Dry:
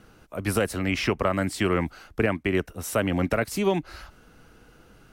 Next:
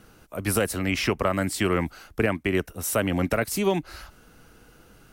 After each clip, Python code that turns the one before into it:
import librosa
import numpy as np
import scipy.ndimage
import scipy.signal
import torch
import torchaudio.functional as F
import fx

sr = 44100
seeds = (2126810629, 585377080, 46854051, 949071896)

y = fx.high_shelf(x, sr, hz=7500.0, db=9.0)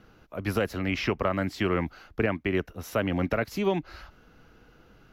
y = scipy.signal.lfilter(np.full(5, 1.0 / 5), 1.0, x)
y = y * 10.0 ** (-2.5 / 20.0)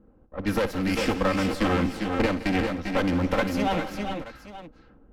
y = fx.lower_of_two(x, sr, delay_ms=3.8)
y = fx.env_lowpass(y, sr, base_hz=470.0, full_db=-28.5)
y = fx.echo_multitap(y, sr, ms=(58, 169, 307, 396, 411, 879), db=(-13.5, -16.0, -19.5, -7.5, -7.5, -15.5))
y = y * 10.0 ** (3.0 / 20.0)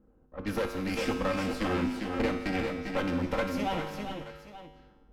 y = fx.comb_fb(x, sr, f0_hz=51.0, decay_s=1.1, harmonics='odd', damping=0.0, mix_pct=80)
y = y * 10.0 ** (5.5 / 20.0)